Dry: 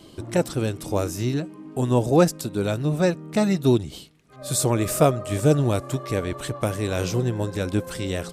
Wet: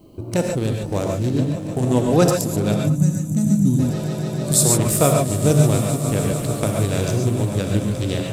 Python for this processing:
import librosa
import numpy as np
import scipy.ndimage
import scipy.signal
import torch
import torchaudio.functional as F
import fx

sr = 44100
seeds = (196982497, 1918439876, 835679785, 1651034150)

p1 = fx.wiener(x, sr, points=25)
p2 = fx.recorder_agc(p1, sr, target_db=-14.0, rise_db_per_s=11.0, max_gain_db=30)
p3 = fx.low_shelf(p2, sr, hz=200.0, db=3.0)
p4 = p3 + fx.echo_swell(p3, sr, ms=148, loudest=5, wet_db=-17, dry=0)
p5 = fx.spec_box(p4, sr, start_s=2.81, length_s=0.98, low_hz=310.0, high_hz=5800.0, gain_db=-17)
p6 = fx.rev_gated(p5, sr, seeds[0], gate_ms=160, shape='rising', drr_db=1.5)
p7 = fx.quant_dither(p6, sr, seeds[1], bits=12, dither='none')
p8 = fx.high_shelf(p7, sr, hz=3400.0, db=11.0)
y = F.gain(torch.from_numpy(p8), -1.0).numpy()